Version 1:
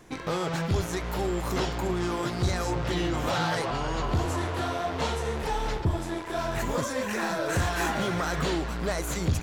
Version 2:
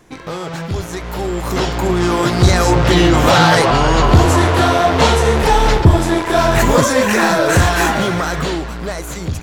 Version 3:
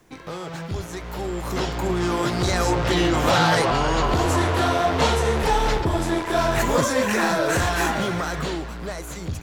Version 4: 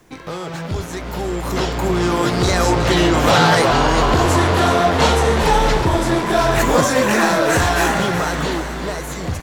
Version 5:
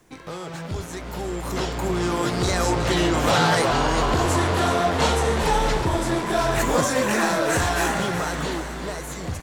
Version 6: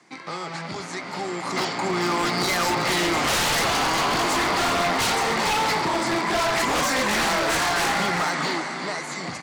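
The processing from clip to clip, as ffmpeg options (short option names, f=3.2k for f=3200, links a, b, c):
-af "dynaudnorm=f=350:g=11:m=14dB,volume=3.5dB"
-filter_complex "[0:a]acrossover=split=280|580|6000[a][b][c][d];[a]alimiter=limit=-12dB:level=0:latency=1[e];[e][b][c][d]amix=inputs=4:normalize=0,acrusher=bits=9:mix=0:aa=0.000001,volume=-7.5dB"
-filter_complex "[0:a]asplit=8[a][b][c][d][e][f][g][h];[b]adelay=370,afreqshift=92,volume=-10.5dB[i];[c]adelay=740,afreqshift=184,volume=-15.2dB[j];[d]adelay=1110,afreqshift=276,volume=-20dB[k];[e]adelay=1480,afreqshift=368,volume=-24.7dB[l];[f]adelay=1850,afreqshift=460,volume=-29.4dB[m];[g]adelay=2220,afreqshift=552,volume=-34.2dB[n];[h]adelay=2590,afreqshift=644,volume=-38.9dB[o];[a][i][j][k][l][m][n][o]amix=inputs=8:normalize=0,volume=5dB"
-af "equalizer=f=8.7k:w=1.5:g=4,volume=-6dB"
-af "highpass=f=160:w=0.5412,highpass=f=160:w=1.3066,equalizer=f=470:t=q:w=4:g=-5,equalizer=f=820:t=q:w=4:g=5,equalizer=f=1.2k:t=q:w=4:g=6,equalizer=f=2.1k:t=q:w=4:g=10,equalizer=f=4.6k:t=q:w=4:g=10,lowpass=f=9k:w=0.5412,lowpass=f=9k:w=1.3066,aeval=exprs='0.141*(abs(mod(val(0)/0.141+3,4)-2)-1)':c=same"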